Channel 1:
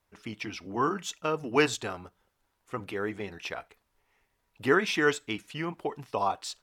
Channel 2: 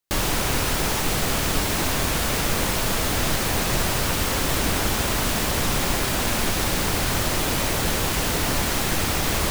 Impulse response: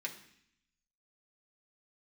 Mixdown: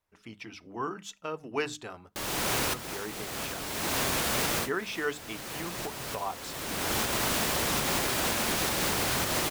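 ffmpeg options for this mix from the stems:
-filter_complex "[0:a]volume=-6.5dB,asplit=2[link_01][link_02];[1:a]highpass=frequency=160:poles=1,adelay=2050,volume=0dB[link_03];[link_02]apad=whole_len=509520[link_04];[link_03][link_04]sidechaincompress=threshold=-50dB:ratio=6:attack=9.8:release=574[link_05];[link_01][link_05]amix=inputs=2:normalize=0,bandreject=frequency=50:width_type=h:width=6,bandreject=frequency=100:width_type=h:width=6,bandreject=frequency=150:width_type=h:width=6,bandreject=frequency=200:width_type=h:width=6,bandreject=frequency=250:width_type=h:width=6,bandreject=frequency=300:width_type=h:width=6,alimiter=limit=-18dB:level=0:latency=1:release=249"

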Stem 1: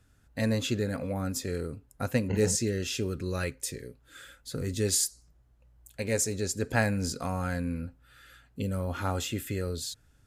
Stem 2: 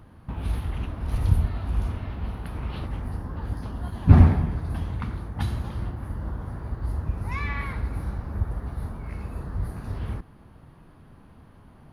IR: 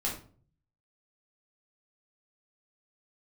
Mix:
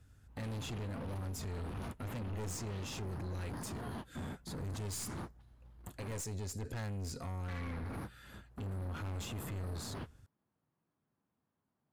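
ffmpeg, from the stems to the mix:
-filter_complex "[0:a]equalizer=frequency=86:width_type=o:width=1.5:gain=8.5,volume=-2dB,asplit=2[link_01][link_02];[1:a]highpass=150,acompressor=threshold=-34dB:ratio=6,aeval=exprs='0.0841*sin(PI/2*2.82*val(0)/0.0841)':channel_layout=same,volume=-9.5dB,asplit=3[link_03][link_04][link_05];[link_03]atrim=end=6.21,asetpts=PTS-STARTPTS,afade=type=out:start_time=6.206:duration=0.004:curve=hsin[link_06];[link_04]atrim=start=6.21:end=7.48,asetpts=PTS-STARTPTS,volume=0[link_07];[link_05]atrim=start=7.48,asetpts=PTS-STARTPTS,afade=type=in:duration=0.004:curve=hsin[link_08];[link_06][link_07][link_08]concat=n=3:v=0:a=1[link_09];[link_02]apad=whole_len=526082[link_10];[link_09][link_10]sidechaingate=range=-33dB:threshold=-51dB:ratio=16:detection=peak[link_11];[link_01][link_11]amix=inputs=2:normalize=0,aeval=exprs='(tanh(31.6*val(0)+0.35)-tanh(0.35))/31.6':channel_layout=same,alimiter=level_in=11.5dB:limit=-24dB:level=0:latency=1:release=12,volume=-11.5dB"

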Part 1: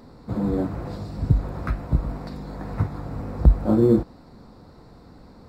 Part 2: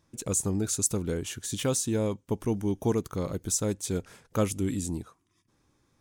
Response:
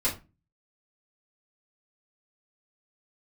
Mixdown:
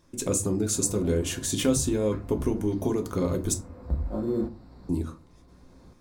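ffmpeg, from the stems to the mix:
-filter_complex "[0:a]aeval=exprs='val(0)+0.00631*(sin(2*PI*60*n/s)+sin(2*PI*2*60*n/s)/2+sin(2*PI*3*60*n/s)/3+sin(2*PI*4*60*n/s)/4+sin(2*PI*5*60*n/s)/5)':channel_layout=same,adelay=450,volume=-3.5dB,asplit=2[link_01][link_02];[link_02]volume=-20.5dB[link_03];[1:a]equalizer=frequency=350:width_type=o:width=0.77:gain=4.5,acompressor=threshold=-28dB:ratio=6,volume=2.5dB,asplit=3[link_04][link_05][link_06];[link_04]atrim=end=3.54,asetpts=PTS-STARTPTS,afade=type=out:start_time=3.536:duration=0.004:curve=hsin[link_07];[link_05]atrim=start=3.54:end=4.89,asetpts=PTS-STARTPTS,volume=0[link_08];[link_06]atrim=start=4.89,asetpts=PTS-STARTPTS,afade=type=in:duration=0.004:curve=hsin[link_09];[link_07][link_08][link_09]concat=n=3:v=0:a=1,asplit=3[link_10][link_11][link_12];[link_11]volume=-10dB[link_13];[link_12]apad=whole_len=261557[link_14];[link_01][link_14]sidechaincompress=threshold=-50dB:ratio=4:attack=23:release=883[link_15];[2:a]atrim=start_sample=2205[link_16];[link_03][link_13]amix=inputs=2:normalize=0[link_17];[link_17][link_16]afir=irnorm=-1:irlink=0[link_18];[link_15][link_10][link_18]amix=inputs=3:normalize=0"

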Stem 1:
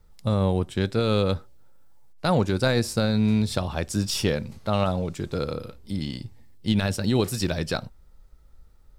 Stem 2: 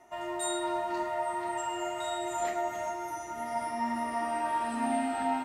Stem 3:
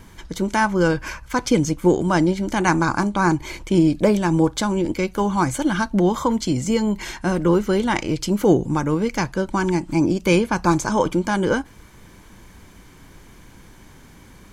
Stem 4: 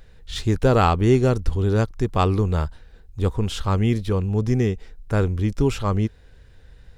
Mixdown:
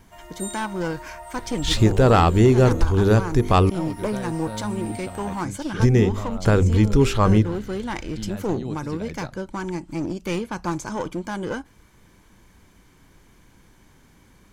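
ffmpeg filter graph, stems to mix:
ffmpeg -i stem1.wav -i stem2.wav -i stem3.wav -i stem4.wav -filter_complex "[0:a]lowpass=frequency=1600:poles=1,alimiter=limit=-16dB:level=0:latency=1:release=151,adelay=1500,volume=-8dB[link_01];[1:a]aemphasis=mode=production:type=bsi,volume=-8dB[link_02];[2:a]aeval=exprs='clip(val(0),-1,0.126)':channel_layout=same,volume=-8dB[link_03];[3:a]bandreject=frequency=49.92:width_type=h:width=4,bandreject=frequency=99.84:width_type=h:width=4,bandreject=frequency=149.76:width_type=h:width=4,bandreject=frequency=199.68:width_type=h:width=4,bandreject=frequency=249.6:width_type=h:width=4,bandreject=frequency=299.52:width_type=h:width=4,bandreject=frequency=349.44:width_type=h:width=4,bandreject=frequency=399.36:width_type=h:width=4,bandreject=frequency=449.28:width_type=h:width=4,bandreject=frequency=499.2:width_type=h:width=4,bandreject=frequency=549.12:width_type=h:width=4,acontrast=54,adelay=1350,volume=2dB,asplit=3[link_04][link_05][link_06];[link_04]atrim=end=3.7,asetpts=PTS-STARTPTS,afade=type=out:start_time=3.696:duration=0.004:curve=hsin[link_07];[link_05]atrim=start=3.7:end=5.8,asetpts=PTS-STARTPTS,volume=0[link_08];[link_06]atrim=start=5.8,asetpts=PTS-STARTPTS,afade=type=in:duration=0.004:curve=hsin[link_09];[link_07][link_08][link_09]concat=n=3:v=0:a=1[link_10];[link_01][link_02][link_03][link_10]amix=inputs=4:normalize=0,alimiter=limit=-6.5dB:level=0:latency=1:release=454" out.wav

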